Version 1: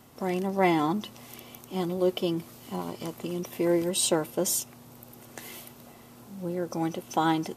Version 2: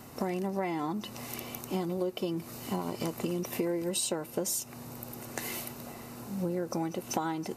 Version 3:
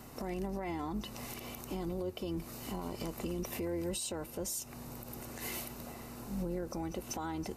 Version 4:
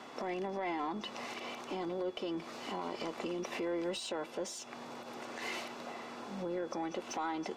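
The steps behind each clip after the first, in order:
band-stop 3.3 kHz, Q 6.8; compression 16:1, threshold -34 dBFS, peak gain reduction 18 dB; trim +6 dB
octave divider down 2 oct, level -6 dB; peak limiter -26 dBFS, peak gain reduction 10.5 dB; trim -2.5 dB
three-band isolator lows -23 dB, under 180 Hz, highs -22 dB, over 7.1 kHz; overdrive pedal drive 12 dB, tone 2.8 kHz, clips at -27 dBFS; whistle 3.4 kHz -64 dBFS; trim +1 dB

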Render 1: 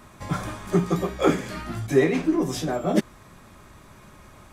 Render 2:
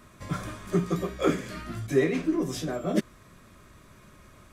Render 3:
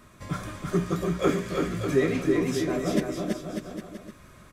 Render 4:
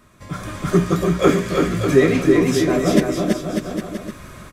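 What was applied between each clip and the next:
peaking EQ 830 Hz -11 dB 0.28 oct; trim -4 dB
bouncing-ball echo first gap 330 ms, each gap 0.8×, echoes 5
level rider gain up to 13 dB

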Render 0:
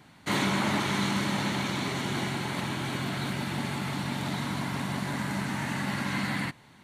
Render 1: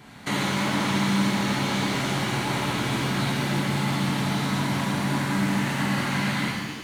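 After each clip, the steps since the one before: compression, threshold -33 dBFS, peak gain reduction 10 dB; pitch-shifted reverb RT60 1.4 s, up +7 st, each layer -8 dB, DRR -3.5 dB; trim +5 dB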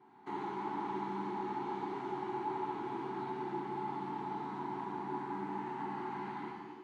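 two resonant band-passes 570 Hz, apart 1.2 oct; trim -3 dB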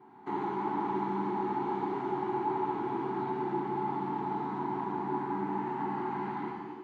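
treble shelf 2.4 kHz -10 dB; trim +7 dB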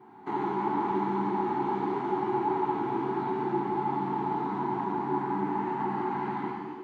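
flange 0.85 Hz, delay 8.1 ms, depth 7.7 ms, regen -53%; trim +7.5 dB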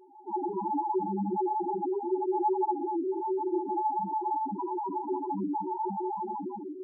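loudest bins only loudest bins 2; trim +5 dB

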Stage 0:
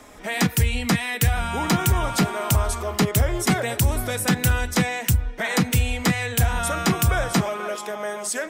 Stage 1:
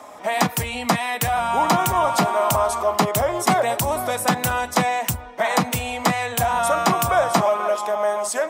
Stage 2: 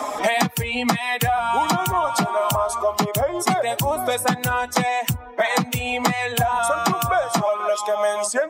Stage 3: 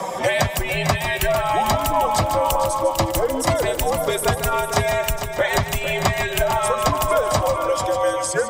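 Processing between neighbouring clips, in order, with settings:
Bessel high-pass 180 Hz, order 2; high-order bell 820 Hz +10 dB 1.3 oct
expander on every frequency bin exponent 1.5; three bands compressed up and down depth 100%; trim +1 dB
frequency shift -86 Hz; multi-head delay 150 ms, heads first and third, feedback 49%, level -10 dB

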